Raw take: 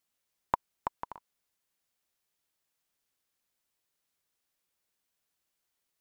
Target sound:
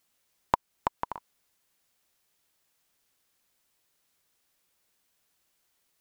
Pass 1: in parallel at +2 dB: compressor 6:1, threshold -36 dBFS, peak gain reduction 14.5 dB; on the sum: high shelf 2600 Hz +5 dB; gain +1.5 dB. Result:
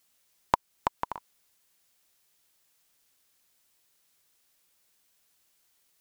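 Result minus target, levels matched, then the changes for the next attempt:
4000 Hz band +3.0 dB
remove: high shelf 2600 Hz +5 dB

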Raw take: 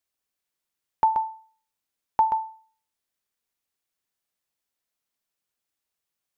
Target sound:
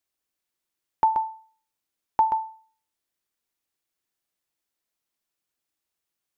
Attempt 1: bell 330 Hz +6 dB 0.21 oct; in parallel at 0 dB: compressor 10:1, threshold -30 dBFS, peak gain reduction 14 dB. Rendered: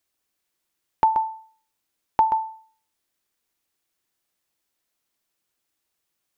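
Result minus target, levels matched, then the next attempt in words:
compressor: peak gain reduction +14 dB
bell 330 Hz +6 dB 0.21 oct

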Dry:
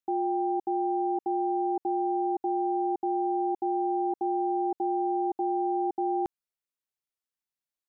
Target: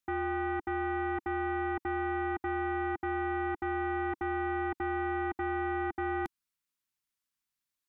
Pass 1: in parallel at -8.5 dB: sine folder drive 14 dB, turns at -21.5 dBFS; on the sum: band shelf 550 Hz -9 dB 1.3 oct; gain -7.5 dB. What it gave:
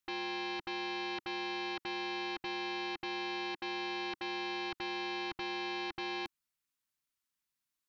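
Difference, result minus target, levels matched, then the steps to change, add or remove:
sine folder: distortion +34 dB
change: sine folder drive 14 dB, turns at -12 dBFS

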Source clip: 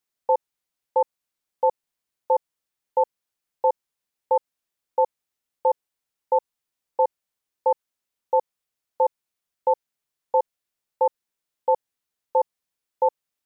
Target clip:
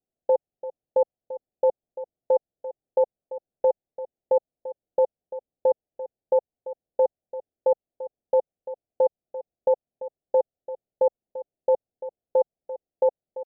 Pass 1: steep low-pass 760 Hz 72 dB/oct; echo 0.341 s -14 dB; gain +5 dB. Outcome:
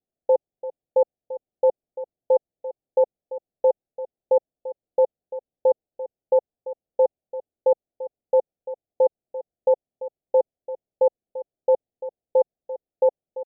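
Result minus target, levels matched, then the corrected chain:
250 Hz band -3.0 dB
steep low-pass 760 Hz 72 dB/oct; dynamic EQ 340 Hz, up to -5 dB, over -35 dBFS, Q 1.2; echo 0.341 s -14 dB; gain +5 dB

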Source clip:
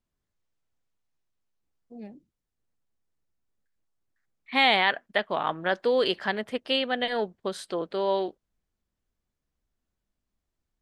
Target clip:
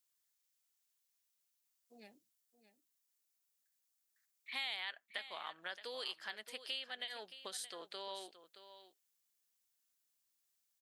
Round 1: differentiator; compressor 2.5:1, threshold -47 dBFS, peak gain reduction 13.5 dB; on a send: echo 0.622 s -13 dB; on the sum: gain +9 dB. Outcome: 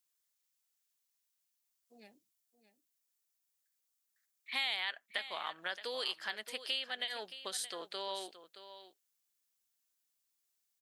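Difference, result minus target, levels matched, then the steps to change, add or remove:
compressor: peak gain reduction -5.5 dB
change: compressor 2.5:1, threshold -56.5 dBFS, peak gain reduction 19.5 dB

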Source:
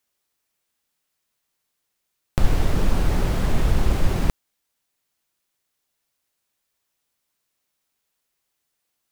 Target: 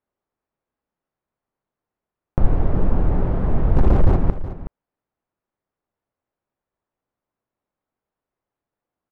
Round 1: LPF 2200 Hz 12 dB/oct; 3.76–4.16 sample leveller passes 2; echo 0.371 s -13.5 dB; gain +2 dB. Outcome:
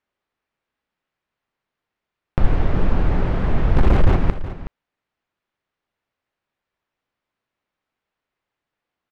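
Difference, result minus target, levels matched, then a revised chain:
2000 Hz band +8.5 dB
LPF 990 Hz 12 dB/oct; 3.76–4.16 sample leveller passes 2; echo 0.371 s -13.5 dB; gain +2 dB

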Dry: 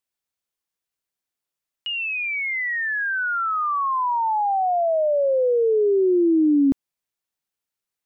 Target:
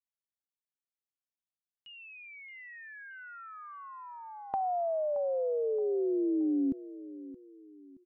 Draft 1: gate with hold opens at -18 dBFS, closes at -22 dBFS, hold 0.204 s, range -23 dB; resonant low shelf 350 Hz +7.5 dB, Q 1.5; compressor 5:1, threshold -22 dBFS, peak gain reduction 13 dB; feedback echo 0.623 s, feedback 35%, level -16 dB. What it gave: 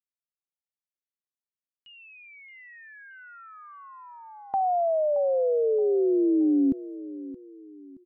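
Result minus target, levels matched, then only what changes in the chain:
compressor: peak gain reduction -7 dB
change: compressor 5:1, threshold -31 dBFS, peak gain reduction 20.5 dB

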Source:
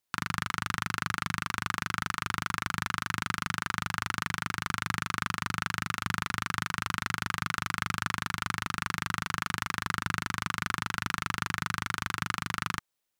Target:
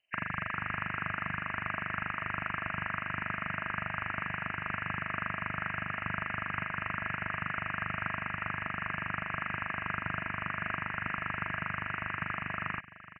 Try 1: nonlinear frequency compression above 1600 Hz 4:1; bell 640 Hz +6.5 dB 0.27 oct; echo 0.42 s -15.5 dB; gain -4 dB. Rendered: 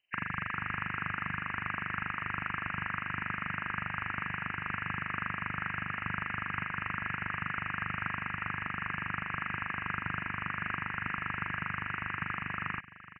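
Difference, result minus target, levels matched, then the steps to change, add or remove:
500 Hz band -5.5 dB
change: bell 640 Hz +16.5 dB 0.27 oct

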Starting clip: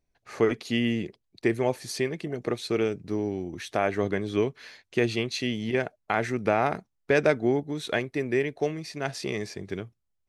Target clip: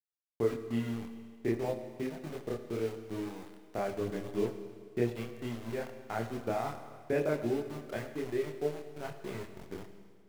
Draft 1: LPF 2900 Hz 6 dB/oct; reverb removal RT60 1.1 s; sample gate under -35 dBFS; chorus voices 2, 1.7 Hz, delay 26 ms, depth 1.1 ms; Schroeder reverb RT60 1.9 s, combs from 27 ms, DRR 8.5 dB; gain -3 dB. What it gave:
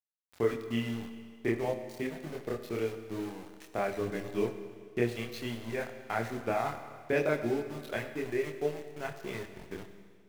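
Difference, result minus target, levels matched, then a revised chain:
4000 Hz band +3.5 dB
LPF 730 Hz 6 dB/oct; reverb removal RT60 1.1 s; sample gate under -35 dBFS; chorus voices 2, 1.7 Hz, delay 26 ms, depth 1.1 ms; Schroeder reverb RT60 1.9 s, combs from 27 ms, DRR 8.5 dB; gain -3 dB

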